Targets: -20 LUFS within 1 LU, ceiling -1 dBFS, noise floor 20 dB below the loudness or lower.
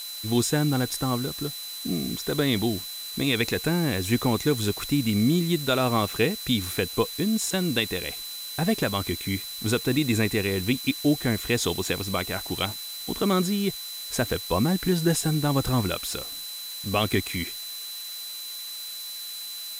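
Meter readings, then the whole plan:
steady tone 4000 Hz; tone level -36 dBFS; noise floor -37 dBFS; noise floor target -46 dBFS; loudness -26.0 LUFS; peak -10.0 dBFS; loudness target -20.0 LUFS
-> notch 4000 Hz, Q 30; denoiser 9 dB, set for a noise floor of -37 dBFS; gain +6 dB

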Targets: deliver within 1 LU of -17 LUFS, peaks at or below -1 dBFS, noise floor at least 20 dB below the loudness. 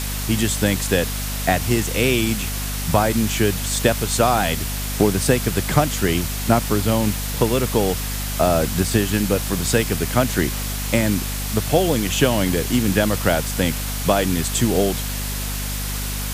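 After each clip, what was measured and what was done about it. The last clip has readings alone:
hum 50 Hz; harmonics up to 250 Hz; hum level -25 dBFS; noise floor -26 dBFS; noise floor target -40 dBFS; loudness -20.0 LUFS; peak -2.0 dBFS; loudness target -17.0 LUFS
-> notches 50/100/150/200/250 Hz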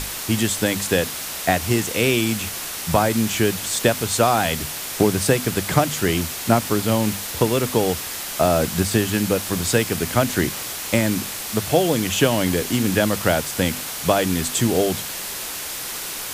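hum none; noise floor -30 dBFS; noise floor target -41 dBFS
-> denoiser 11 dB, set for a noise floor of -30 dBFS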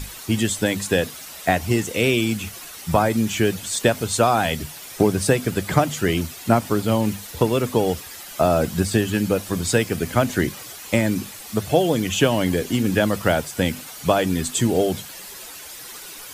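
noise floor -38 dBFS; noise floor target -42 dBFS
-> denoiser 6 dB, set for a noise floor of -38 dBFS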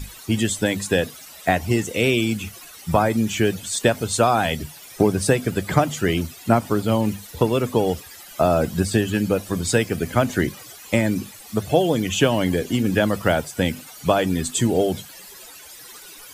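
noise floor -42 dBFS; loudness -21.5 LUFS; peak -3.5 dBFS; loudness target -17.0 LUFS
-> gain +4.5 dB; limiter -1 dBFS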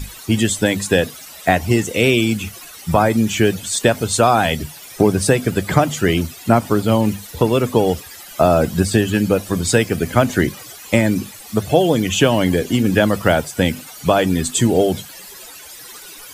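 loudness -17.5 LUFS; peak -1.0 dBFS; noise floor -38 dBFS

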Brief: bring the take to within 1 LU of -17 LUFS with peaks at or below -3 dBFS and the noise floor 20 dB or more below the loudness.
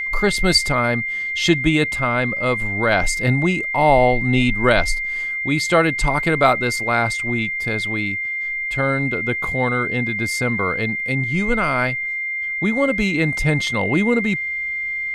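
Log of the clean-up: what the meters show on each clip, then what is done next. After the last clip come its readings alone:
steady tone 2100 Hz; tone level -22 dBFS; loudness -19.0 LUFS; peak -2.5 dBFS; loudness target -17.0 LUFS
-> notch 2100 Hz, Q 30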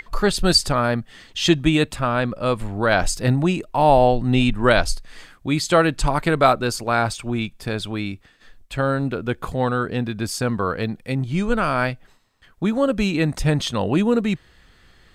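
steady tone none; loudness -21.0 LUFS; peak -3.0 dBFS; loudness target -17.0 LUFS
-> gain +4 dB; limiter -3 dBFS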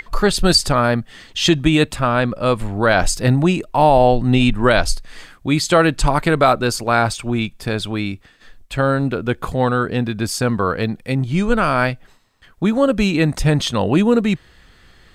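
loudness -17.5 LUFS; peak -3.0 dBFS; noise floor -50 dBFS

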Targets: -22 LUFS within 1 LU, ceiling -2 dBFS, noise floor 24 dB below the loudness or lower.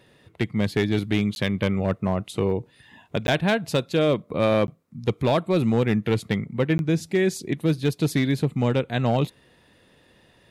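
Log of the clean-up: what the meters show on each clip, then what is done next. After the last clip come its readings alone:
clipped 0.6%; flat tops at -13.5 dBFS; dropouts 4; longest dropout 11 ms; loudness -24.0 LUFS; peak -13.5 dBFS; loudness target -22.0 LUFS
-> clip repair -13.5 dBFS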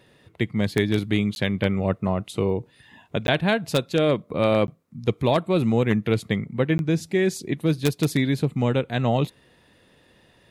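clipped 0.0%; dropouts 4; longest dropout 11 ms
-> interpolate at 1.35/3.27/4.67/6.78, 11 ms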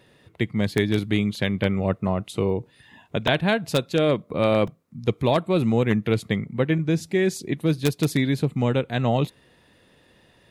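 dropouts 0; loudness -23.5 LUFS; peak -4.5 dBFS; loudness target -22.0 LUFS
-> gain +1.5 dB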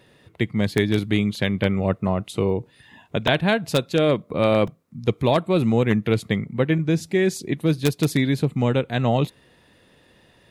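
loudness -22.0 LUFS; peak -3.0 dBFS; noise floor -57 dBFS

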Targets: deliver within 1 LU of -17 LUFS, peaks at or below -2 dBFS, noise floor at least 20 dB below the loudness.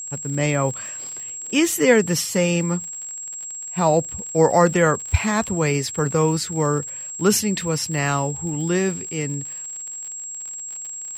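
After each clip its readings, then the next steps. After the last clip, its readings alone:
ticks 58/s; steady tone 7600 Hz; tone level -30 dBFS; loudness -22.0 LUFS; peak -3.5 dBFS; loudness target -17.0 LUFS
-> de-click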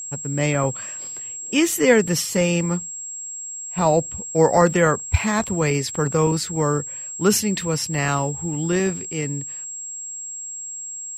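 ticks 0.18/s; steady tone 7600 Hz; tone level -30 dBFS
-> notch 7600 Hz, Q 30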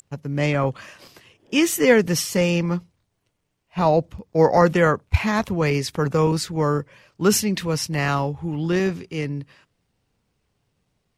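steady tone none; loudness -21.5 LUFS; peak -4.0 dBFS; loudness target -17.0 LUFS
-> gain +4.5 dB; limiter -2 dBFS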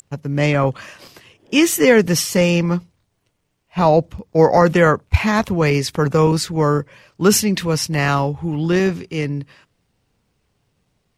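loudness -17.0 LUFS; peak -2.0 dBFS; noise floor -69 dBFS

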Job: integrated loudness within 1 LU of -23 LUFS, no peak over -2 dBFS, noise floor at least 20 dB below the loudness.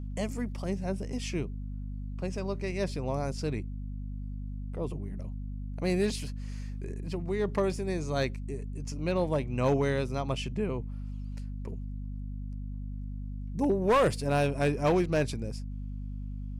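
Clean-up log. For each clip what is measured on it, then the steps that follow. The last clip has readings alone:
clipped 0.4%; flat tops at -19.0 dBFS; hum 50 Hz; harmonics up to 250 Hz; hum level -34 dBFS; loudness -32.5 LUFS; peak -19.0 dBFS; loudness target -23.0 LUFS
-> clip repair -19 dBFS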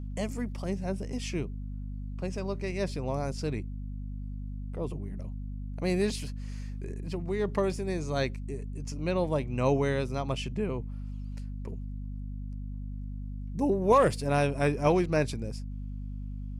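clipped 0.0%; hum 50 Hz; harmonics up to 250 Hz; hum level -34 dBFS
-> notches 50/100/150/200/250 Hz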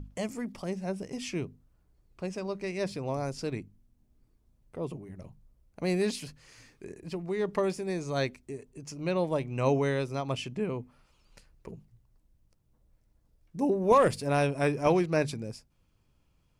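hum none; loudness -30.5 LUFS; peak -11.0 dBFS; loudness target -23.0 LUFS
-> gain +7.5 dB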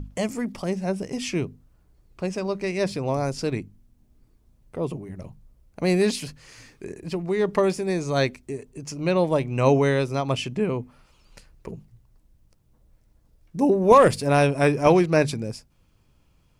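loudness -23.5 LUFS; peak -3.5 dBFS; noise floor -62 dBFS

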